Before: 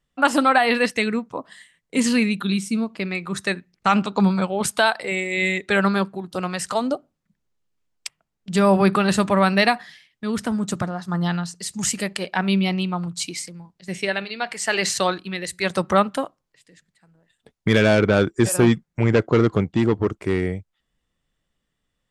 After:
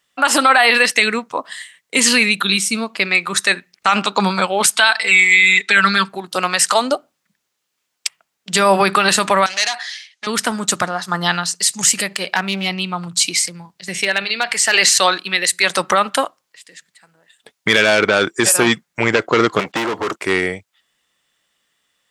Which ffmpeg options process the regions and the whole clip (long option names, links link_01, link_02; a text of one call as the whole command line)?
ffmpeg -i in.wav -filter_complex "[0:a]asettb=1/sr,asplit=3[link_01][link_02][link_03];[link_01]atrim=end=4.754[link_04];[link_02]atrim=start=4.75:end=6.09,asetpts=PTS-STARTPTS,afade=type=in:duration=0.004:curve=qsin,afade=type=out:start_time=1.336:duration=0.004:curve=qsin,highpass=110,lowpass=7800,equalizer=frequency=510:width=0.78:gain=-10.5,aecho=1:1:4.5:0.93,atrim=end_sample=59094[link_05];[link_03]atrim=start=6.086[link_06];[link_04][link_05]acrossfade=duration=0.004:curve1=hsin:curve2=qsin[link_07];[link_07][link_06]acrossfade=duration=0.004:curve1=qsin:curve2=hsin,asettb=1/sr,asplit=3[link_08][link_09][link_10];[link_08]atrim=end=9.464[link_11];[link_09]atrim=start=9.46:end=10.27,asetpts=PTS-STARTPTS,afade=type=in:duration=0.004:curve=qsin,afade=type=out:start_time=0.806:duration=0.004:curve=qsin,acompressor=threshold=-25dB:ratio=2.5:attack=3.2:release=140:knee=1:detection=peak,volume=27.5dB,asoftclip=hard,volume=-27.5dB,highpass=480,equalizer=frequency=490:width_type=q:width=4:gain=-7,equalizer=frequency=1100:width_type=q:width=4:gain=-5,equalizer=frequency=4300:width_type=q:width=4:gain=5,equalizer=frequency=6200:width_type=q:width=4:gain=8,lowpass=frequency=9900:width=0.5412,lowpass=frequency=9900:width=1.3066[link_12];[link_10]atrim=start=10.266[link_13];[link_11][link_12]acrossfade=duration=0.004:curve1=hsin:curve2=qsin[link_14];[link_14][link_13]acrossfade=duration=0.004:curve1=qsin:curve2=hsin,asettb=1/sr,asplit=3[link_15][link_16][link_17];[link_15]atrim=end=11.814[link_18];[link_16]atrim=start=11.81:end=14.74,asetpts=PTS-STARTPTS,afade=type=in:duration=0.004:curve=qsin,afade=type=out:start_time=2.926:duration=0.004:curve=qsin,equalizer=frequency=120:width=0.72:gain=8.5,aeval=exprs='clip(val(0),-1,0.224)':channel_layout=same,acompressor=threshold=-27dB:ratio=2:attack=3.2:release=140:knee=1:detection=peak[link_19];[link_17]atrim=start=14.736[link_20];[link_18][link_19]acrossfade=duration=0.004:curve1=hsin:curve2=qsin[link_21];[link_21][link_20]acrossfade=duration=0.004:curve1=qsin:curve2=hsin,asettb=1/sr,asplit=3[link_22][link_23][link_24];[link_22]atrim=end=19.594[link_25];[link_23]atrim=start=19.59:end=20.16,asetpts=PTS-STARTPTS,afade=type=in:duration=0.004:curve=qsin,afade=type=out:start_time=0.566:duration=0.004:curve=qsin,agate=range=-16dB:threshold=-42dB:ratio=16:release=100:detection=peak,asplit=2[link_26][link_27];[link_27]highpass=frequency=720:poles=1,volume=31dB,asoftclip=type=tanh:threshold=-7.5dB[link_28];[link_26][link_28]amix=inputs=2:normalize=0,lowpass=frequency=1300:poles=1,volume=-6dB,acrossover=split=340|5700[link_29][link_30][link_31];[link_29]acompressor=threshold=-29dB:ratio=4[link_32];[link_30]acompressor=threshold=-30dB:ratio=4[link_33];[link_31]acompressor=threshold=-51dB:ratio=4[link_34];[link_32][link_33][link_34]amix=inputs=3:normalize=0[link_35];[link_24]atrim=start=20.156[link_36];[link_25][link_35]acrossfade=duration=0.004:curve1=hsin:curve2=qsin[link_37];[link_37][link_36]acrossfade=duration=0.004:curve1=qsin:curve2=hsin,highpass=frequency=1500:poles=1,alimiter=level_in=16.5dB:limit=-1dB:release=50:level=0:latency=1,volume=-1dB" out.wav